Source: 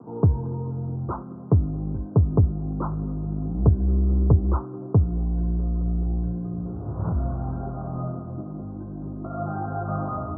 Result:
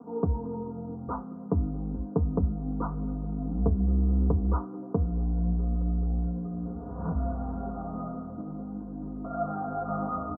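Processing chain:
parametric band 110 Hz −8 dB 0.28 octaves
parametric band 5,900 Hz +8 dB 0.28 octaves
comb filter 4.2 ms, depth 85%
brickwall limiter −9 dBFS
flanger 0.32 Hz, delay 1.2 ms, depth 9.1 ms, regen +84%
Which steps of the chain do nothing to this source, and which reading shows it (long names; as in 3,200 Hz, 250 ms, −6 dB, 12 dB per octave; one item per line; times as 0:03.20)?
parametric band 5,900 Hz: nothing at its input above 480 Hz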